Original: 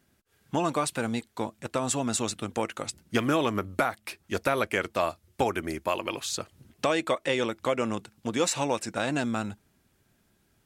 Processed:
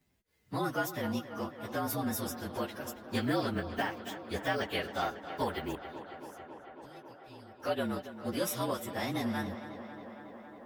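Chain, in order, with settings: frequency axis rescaled in octaves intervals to 113%; 5.75–7.60 s: amplifier tone stack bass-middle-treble 10-0-1; tape echo 274 ms, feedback 88%, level -11 dB, low-pass 3.7 kHz; trim -3 dB

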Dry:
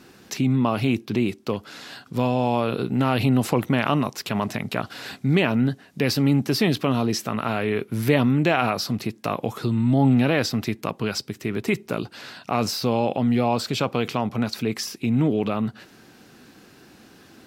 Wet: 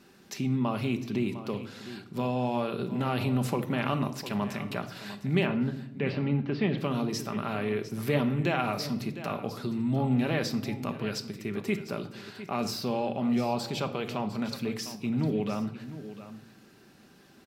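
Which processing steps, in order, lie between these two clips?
5.46–6.78 s: low-pass 3.1 kHz 24 dB/octave; on a send: delay 704 ms -13.5 dB; on the sum: simulated room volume 2000 m³, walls furnished, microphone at 1.2 m; trim -8.5 dB

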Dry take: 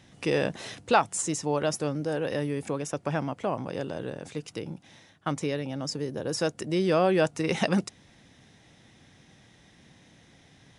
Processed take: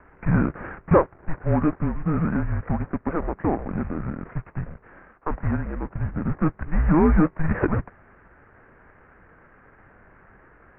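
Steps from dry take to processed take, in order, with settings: CVSD coder 16 kbps; mistuned SSB -320 Hz 270–2100 Hz; trim +8.5 dB

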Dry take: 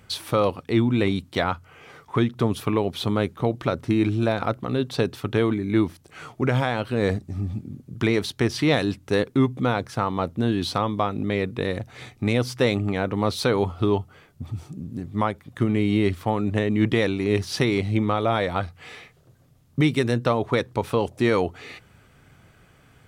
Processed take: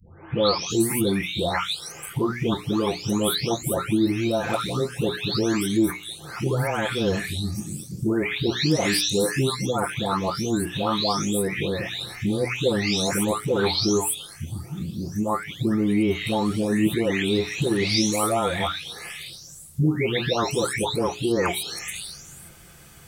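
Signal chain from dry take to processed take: delay that grows with frequency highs late, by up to 700 ms; tone controls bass +2 dB, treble +14 dB; hum notches 60/120/180/240/300/360/420 Hz; in parallel at +2.5 dB: compression, threshold -33 dBFS, peak gain reduction 16 dB; on the sum: trim -1.5 dB

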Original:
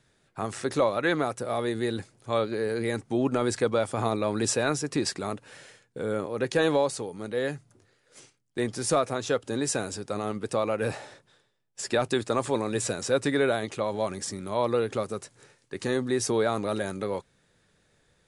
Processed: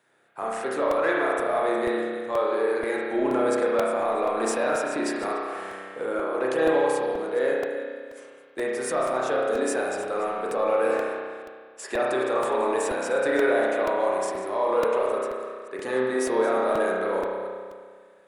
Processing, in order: chunks repeated in reverse 224 ms, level -13 dB; high-pass 490 Hz 12 dB/octave; peaking EQ 5.2 kHz -12.5 dB 1.9 oct; peak limiter -22 dBFS, peak gain reduction 7.5 dB; in parallel at -9 dB: saturation -34.5 dBFS, distortion -8 dB; 5.44–6.06 s: on the sum: flutter echo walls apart 8.9 m, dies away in 1.1 s; spring tank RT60 1.8 s, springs 31 ms, chirp 50 ms, DRR -4 dB; crackling interface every 0.48 s, samples 128, repeat, from 0.91 s; trim +2 dB

